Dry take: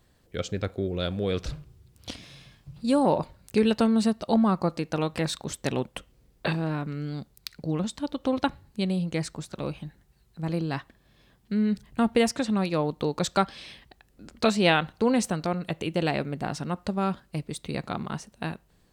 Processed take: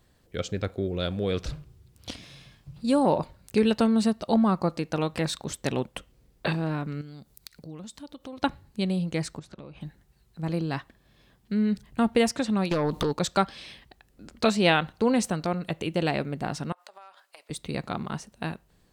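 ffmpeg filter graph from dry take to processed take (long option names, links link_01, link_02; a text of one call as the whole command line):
ffmpeg -i in.wav -filter_complex "[0:a]asettb=1/sr,asplit=3[link_01][link_02][link_03];[link_01]atrim=end=7.014[link_04];[link_02]atrim=start=7.01:end=8.42,asetpts=PTS-STARTPTS,afade=type=in:duration=0.004:curve=qsin,afade=type=out:start_time=1.406:duration=0.004:curve=qsin,highshelf=frequency=6000:gain=8.5,acompressor=threshold=-48dB:ratio=2:attack=3.2:release=140:knee=1:detection=peak[link_05];[link_03]atrim=start=8.416[link_06];[link_04][link_05]acrossfade=duration=0.004:curve1=hsin:curve2=qsin[link_07];[link_07][link_06]acrossfade=duration=0.004:curve1=qsin:curve2=hsin,asettb=1/sr,asplit=3[link_08][link_09][link_10];[link_08]atrim=end=9.394[link_11];[link_09]atrim=start=9.39:end=9.81,asetpts=PTS-STARTPTS,afade=type=in:duration=0.004:curve=qsin,afade=type=out:start_time=0.416:duration=0.004:curve=qsin,aemphasis=mode=reproduction:type=50fm,acompressor=threshold=-38dB:ratio=16:attack=3.2:release=140:knee=1:detection=peak[link_12];[link_10]atrim=start=9.806[link_13];[link_11][link_12]acrossfade=duration=0.004:curve1=hsin:curve2=qsin[link_14];[link_14][link_13]acrossfade=duration=0.004:curve1=qsin:curve2=hsin,asettb=1/sr,asplit=3[link_15][link_16][link_17];[link_15]atrim=end=12.714[link_18];[link_16]atrim=start=12.71:end=13.13,asetpts=PTS-STARTPTS,afade=type=in:duration=0.004:curve=qsin,afade=type=out:start_time=0.416:duration=0.004:curve=qsin,acompressor=threshold=-30dB:ratio=20:attack=3.2:release=140:knee=1:detection=peak,aeval=exprs='0.106*sin(PI/2*3.16*val(0)/0.106)':channel_layout=same[link_19];[link_17]atrim=start=13.126[link_20];[link_18][link_19]acrossfade=duration=0.004:curve1=hsin:curve2=qsin[link_21];[link_21][link_20]acrossfade=duration=0.004:curve1=qsin:curve2=hsin,asettb=1/sr,asplit=3[link_22][link_23][link_24];[link_22]atrim=end=16.724[link_25];[link_23]atrim=start=16.72:end=17.5,asetpts=PTS-STARTPTS,afade=type=in:duration=0.004:curve=qsin,afade=type=out:start_time=0.776:duration=0.004:curve=qsin,aeval=exprs='clip(val(0),-1,0.0708)':channel_layout=same,highpass=frequency=630:width=0.5412,highpass=frequency=630:width=1.3066,acompressor=threshold=-43dB:ratio=20:attack=3.2:release=140:knee=1:detection=peak[link_26];[link_24]atrim=start=17.496[link_27];[link_25][link_26]acrossfade=duration=0.004:curve1=hsin:curve2=qsin[link_28];[link_28][link_27]acrossfade=duration=0.004:curve1=qsin:curve2=hsin" out.wav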